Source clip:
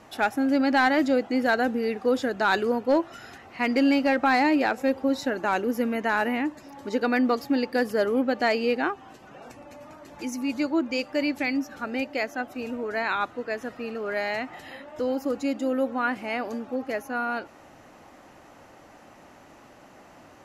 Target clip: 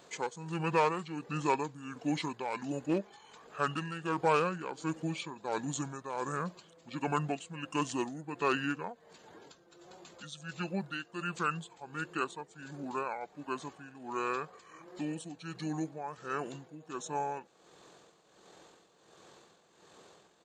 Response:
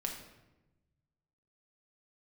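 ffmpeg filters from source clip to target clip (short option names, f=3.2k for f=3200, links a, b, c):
-af "tremolo=f=1.4:d=0.69,asetrate=26222,aresample=44100,atempo=1.68179,aemphasis=mode=production:type=riaa,volume=-3dB"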